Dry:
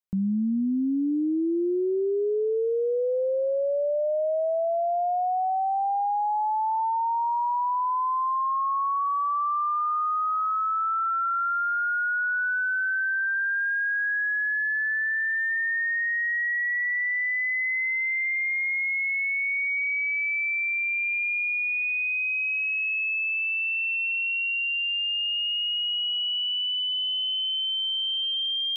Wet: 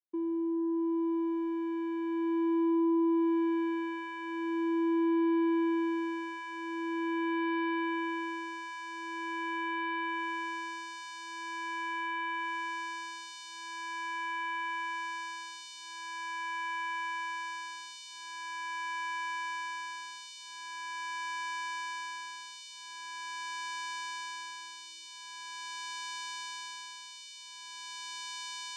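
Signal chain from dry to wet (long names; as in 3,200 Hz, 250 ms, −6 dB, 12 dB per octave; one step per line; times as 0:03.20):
lower of the sound and its delayed copy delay 4.1 ms
reversed playback
upward compression, threshold −30 dBFS
reversed playback
channel vocoder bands 4, square 332 Hz
level −6 dB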